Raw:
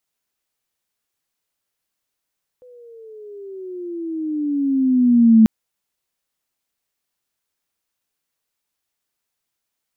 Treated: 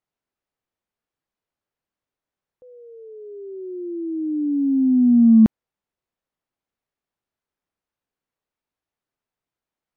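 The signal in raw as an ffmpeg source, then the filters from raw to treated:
-f lavfi -i "aevalsrc='pow(10,(-6+36*(t/2.84-1))/20)*sin(2*PI*504*2.84/(-14.5*log(2)/12)*(exp(-14.5*log(2)/12*t/2.84)-1))':duration=2.84:sample_rate=44100"
-af "lowpass=frequency=1000:poles=1,aeval=exprs='0.501*(cos(1*acos(clip(val(0)/0.501,-1,1)))-cos(1*PI/2))+0.00398*(cos(5*acos(clip(val(0)/0.501,-1,1)))-cos(5*PI/2))':channel_layout=same"

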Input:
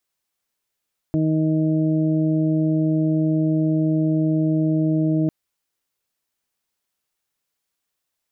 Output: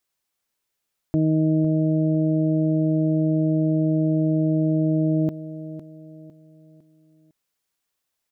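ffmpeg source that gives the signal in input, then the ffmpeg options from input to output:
-f lavfi -i "aevalsrc='0.1*sin(2*PI*157*t)+0.112*sin(2*PI*314*t)+0.0158*sin(2*PI*471*t)+0.0299*sin(2*PI*628*t)':duration=4.15:sample_rate=44100"
-af "aecho=1:1:505|1010|1515|2020:0.224|0.0873|0.0341|0.0133"

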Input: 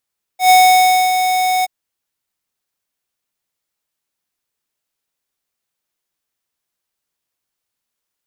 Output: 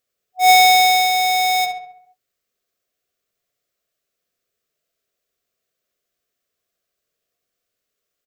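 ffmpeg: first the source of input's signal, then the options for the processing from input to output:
-f lavfi -i "aevalsrc='0.422*(2*lt(mod(740*t,1),0.5)-1)':duration=1.277:sample_rate=44100,afade=type=in:duration=0.111,afade=type=out:start_time=0.111:duration=0.608:silence=0.398,afade=type=out:start_time=1.25:duration=0.027"
-filter_complex "[0:a]superequalizer=7b=2.24:8b=2:9b=0.251:16b=0.631,asplit=2[link_01][link_02];[link_02]adelay=67,lowpass=frequency=2400:poles=1,volume=-4dB,asplit=2[link_03][link_04];[link_04]adelay=67,lowpass=frequency=2400:poles=1,volume=0.55,asplit=2[link_05][link_06];[link_06]adelay=67,lowpass=frequency=2400:poles=1,volume=0.55,asplit=2[link_07][link_08];[link_08]adelay=67,lowpass=frequency=2400:poles=1,volume=0.55,asplit=2[link_09][link_10];[link_10]adelay=67,lowpass=frequency=2400:poles=1,volume=0.55,asplit=2[link_11][link_12];[link_12]adelay=67,lowpass=frequency=2400:poles=1,volume=0.55,asplit=2[link_13][link_14];[link_14]adelay=67,lowpass=frequency=2400:poles=1,volume=0.55[link_15];[link_03][link_05][link_07][link_09][link_11][link_13][link_15]amix=inputs=7:normalize=0[link_16];[link_01][link_16]amix=inputs=2:normalize=0"

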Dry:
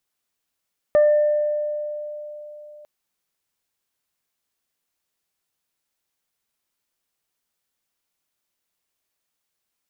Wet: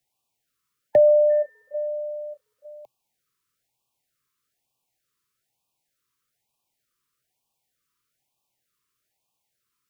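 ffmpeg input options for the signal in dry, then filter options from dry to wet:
-f lavfi -i "aevalsrc='0.282*pow(10,-3*t/3.71)*sin(2*PI*597*t)+0.0335*pow(10,-3*t/0.3)*sin(2*PI*1194*t)+0.0282*pow(10,-3*t/1.41)*sin(2*PI*1791*t)':duration=1.9:sample_rate=44100"
-filter_complex "[0:a]equalizer=frequency=125:width_type=o:width=0.33:gain=11,equalizer=frequency=800:width_type=o:width=0.33:gain=9,equalizer=frequency=1250:width_type=o:width=0.33:gain=10,acrossover=split=120|220|490[link_01][link_02][link_03][link_04];[link_01]asoftclip=type=tanh:threshold=-40dB[link_05];[link_05][link_02][link_03][link_04]amix=inputs=4:normalize=0,afftfilt=real='re*(1-between(b*sr/1024,660*pow(1700/660,0.5+0.5*sin(2*PI*1.1*pts/sr))/1.41,660*pow(1700/660,0.5+0.5*sin(2*PI*1.1*pts/sr))*1.41))':imag='im*(1-between(b*sr/1024,660*pow(1700/660,0.5+0.5*sin(2*PI*1.1*pts/sr))/1.41,660*pow(1700/660,0.5+0.5*sin(2*PI*1.1*pts/sr))*1.41))':win_size=1024:overlap=0.75"

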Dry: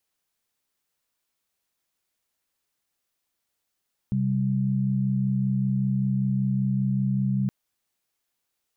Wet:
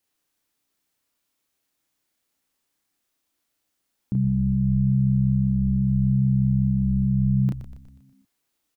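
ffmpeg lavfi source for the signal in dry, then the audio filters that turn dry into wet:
-f lavfi -i "aevalsrc='0.0631*(sin(2*PI*130.81*t)+sin(2*PI*196*t))':duration=3.37:sample_rate=44100"
-filter_complex "[0:a]equalizer=frequency=290:width_type=o:width=0.4:gain=8.5,asplit=2[link_01][link_02];[link_02]adelay=32,volume=-2dB[link_03];[link_01][link_03]amix=inputs=2:normalize=0,asplit=2[link_04][link_05];[link_05]asplit=6[link_06][link_07][link_08][link_09][link_10][link_11];[link_06]adelay=121,afreqshift=-66,volume=-10dB[link_12];[link_07]adelay=242,afreqshift=-132,volume=-15.7dB[link_13];[link_08]adelay=363,afreqshift=-198,volume=-21.4dB[link_14];[link_09]adelay=484,afreqshift=-264,volume=-27dB[link_15];[link_10]adelay=605,afreqshift=-330,volume=-32.7dB[link_16];[link_11]adelay=726,afreqshift=-396,volume=-38.4dB[link_17];[link_12][link_13][link_14][link_15][link_16][link_17]amix=inputs=6:normalize=0[link_18];[link_04][link_18]amix=inputs=2:normalize=0"

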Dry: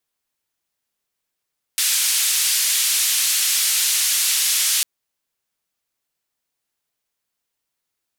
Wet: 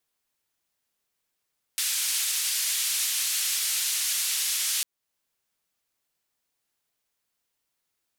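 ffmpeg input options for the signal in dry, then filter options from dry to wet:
-f lavfi -i "anoisesrc=color=white:duration=3.05:sample_rate=44100:seed=1,highpass=frequency=2600,lowpass=frequency=12000,volume=-10.4dB"
-af "alimiter=limit=-18dB:level=0:latency=1:release=363"

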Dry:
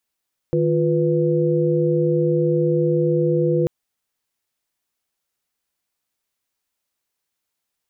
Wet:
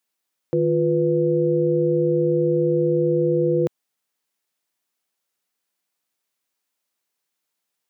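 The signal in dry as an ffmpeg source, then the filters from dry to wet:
-f lavfi -i "aevalsrc='0.1*(sin(2*PI*155.56*t)+sin(2*PI*349.23*t)+sin(2*PI*493.88*t))':duration=3.14:sample_rate=44100"
-af "highpass=160"

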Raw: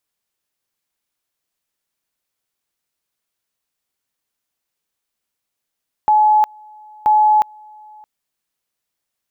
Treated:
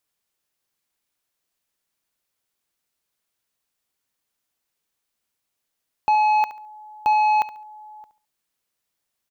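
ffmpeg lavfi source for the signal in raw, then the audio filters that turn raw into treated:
-f lavfi -i "aevalsrc='pow(10,(-9-29*gte(mod(t,0.98),0.36))/20)*sin(2*PI*852*t)':duration=1.96:sample_rate=44100"
-af "asoftclip=type=tanh:threshold=-14.5dB,aecho=1:1:70|140|210:0.2|0.0539|0.0145"

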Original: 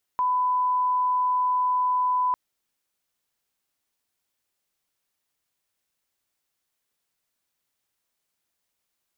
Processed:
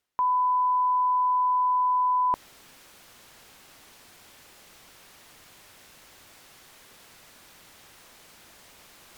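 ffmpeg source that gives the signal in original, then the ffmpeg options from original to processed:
-f lavfi -i "sine=frequency=1000:duration=2.15:sample_rate=44100,volume=-1.94dB"
-af "aemphasis=mode=reproduction:type=cd,areverse,acompressor=mode=upward:threshold=-27dB:ratio=2.5,areverse"

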